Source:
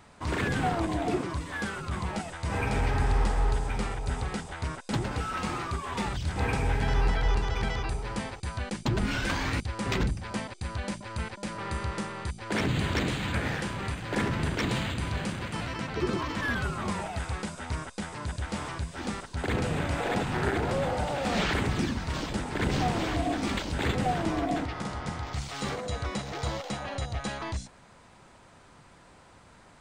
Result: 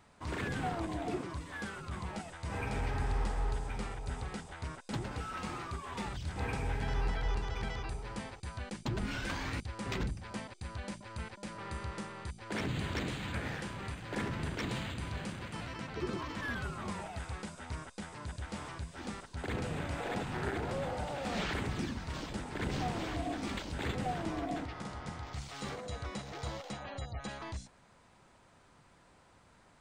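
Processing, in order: 26.73–27.31 s: spectral gate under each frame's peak -30 dB strong; trim -8 dB

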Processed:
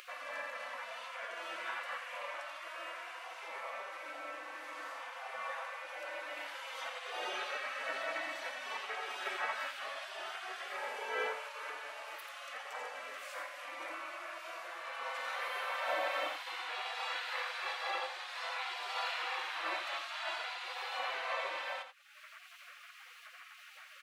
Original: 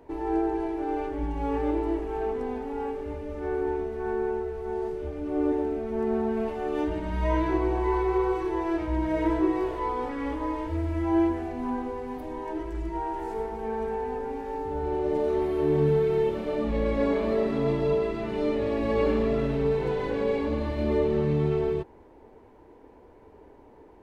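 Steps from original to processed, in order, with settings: spectral gate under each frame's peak -30 dB weak; steep high-pass 380 Hz 36 dB/octave; treble shelf 2 kHz -11 dB; upward compressor, threshold -57 dBFS; on a send: delay 86 ms -9 dB; on the sum: trim +15.5 dB

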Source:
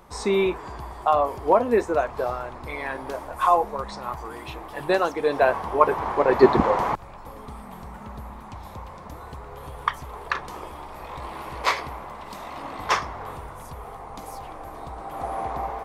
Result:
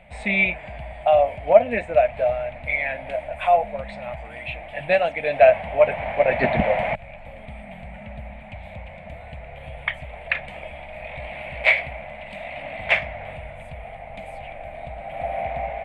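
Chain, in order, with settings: FFT filter 200 Hz 0 dB, 390 Hz -20 dB, 630 Hz +9 dB, 1.1 kHz -20 dB, 2.3 kHz +13 dB, 3.7 kHz -4 dB, 5.7 kHz -26 dB, 8.5 kHz -9 dB, 12 kHz -23 dB; loudspeaker Doppler distortion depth 0.18 ms; trim +2 dB

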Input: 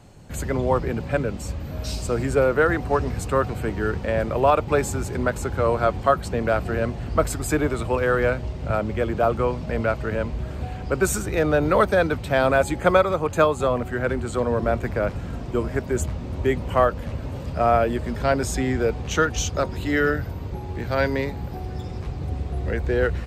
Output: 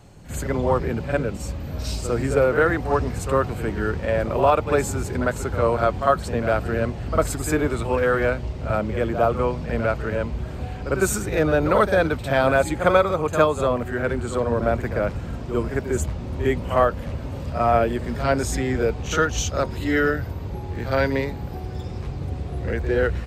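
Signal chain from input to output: reverse echo 52 ms -9.5 dB

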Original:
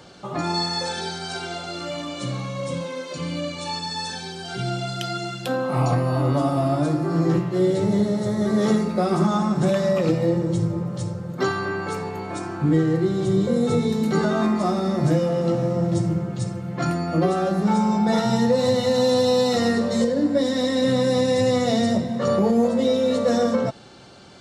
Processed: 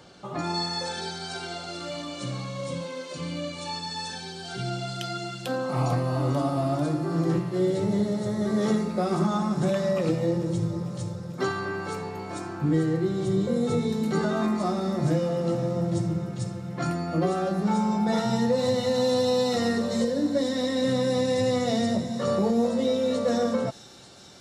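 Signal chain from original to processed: feedback echo behind a high-pass 445 ms, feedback 76%, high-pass 4.7 kHz, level -9 dB; trim -4.5 dB

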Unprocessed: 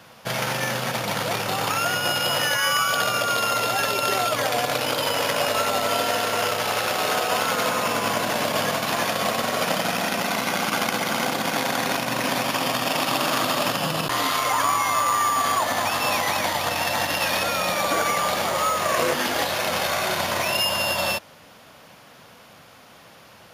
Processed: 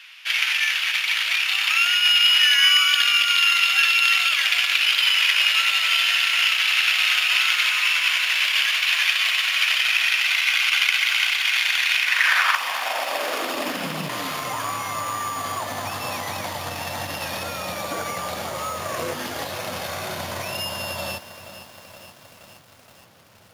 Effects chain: peaking EQ 1.8 kHz +12 dB 2.7 oct, from 12.55 s -2 dB; high-pass sweep 2.6 kHz -> 89 Hz, 11.96–14.56 s; bit-crushed delay 472 ms, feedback 80%, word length 6-bit, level -13 dB; trim -5.5 dB

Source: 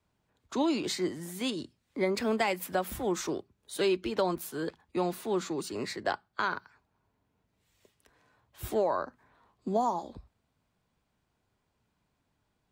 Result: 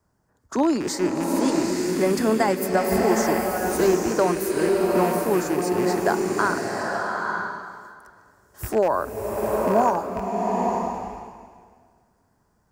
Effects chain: rattle on loud lows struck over -41 dBFS, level -25 dBFS; high-order bell 3 kHz -14 dB 1.1 oct; swelling reverb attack 900 ms, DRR -0.5 dB; trim +7.5 dB

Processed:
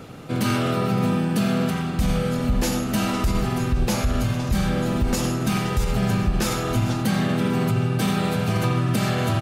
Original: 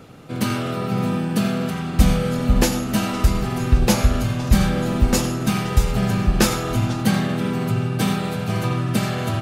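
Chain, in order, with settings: on a send: delay 443 ms -23.5 dB; on the sum: gain riding within 4 dB 0.5 s; peak limiter -12.5 dBFS, peak gain reduction 9.5 dB

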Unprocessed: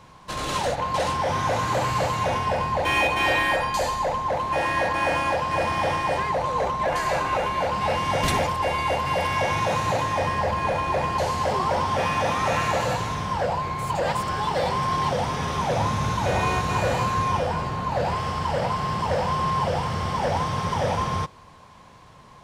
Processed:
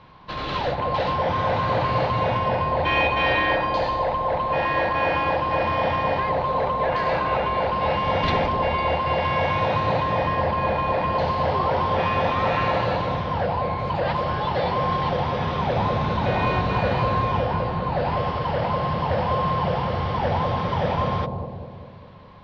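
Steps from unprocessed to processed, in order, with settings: steep low-pass 4.4 kHz 36 dB/octave; on a send: bucket-brigade echo 200 ms, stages 1024, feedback 58%, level -3 dB

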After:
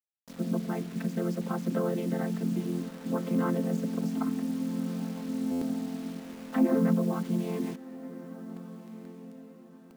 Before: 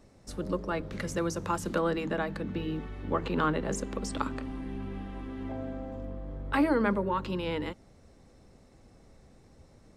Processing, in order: vocoder on a held chord major triad, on F3; dynamic bell 200 Hz, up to +5 dB, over -42 dBFS, Q 0.84; in parallel at +2 dB: peak limiter -22 dBFS, peak gain reduction 11.5 dB; on the sum: bit crusher 7-bit; on a send: echo that smears into a reverb 1448 ms, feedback 41%, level -15.5 dB; on the sum: buffer glitch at 5.51 s, samples 512, times 8; trim -6.5 dB

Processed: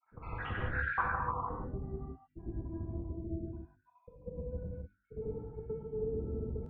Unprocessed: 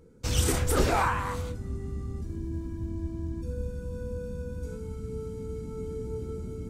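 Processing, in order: random holes in the spectrogram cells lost 75%; low-pass 3.2 kHz 24 dB/octave; peaking EQ 1.7 kHz +5 dB 0.23 oct; hum notches 50/100/150/200/250/300/350 Hz; compression 4:1, threshold -38 dBFS, peak gain reduction 13 dB; low-pass sweep 1.5 kHz -> 710 Hz, 0.78–2.00 s; granulator 100 ms, grains 20 per s, pitch spread up and down by 0 st; gated-style reverb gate 210 ms flat, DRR -2 dB; trim +1 dB

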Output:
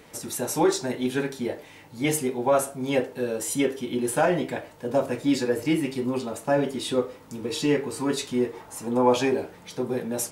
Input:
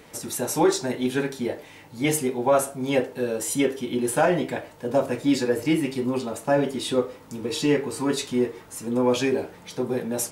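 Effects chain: 8.53–9.34 s: peaking EQ 820 Hz +9 dB 0.96 oct; trim -1.5 dB

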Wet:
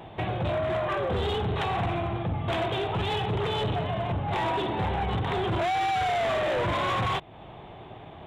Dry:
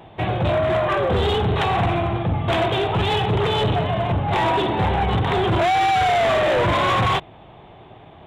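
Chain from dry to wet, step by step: compression 2:1, threshold -33 dBFS, peak gain reduction 8.5 dB

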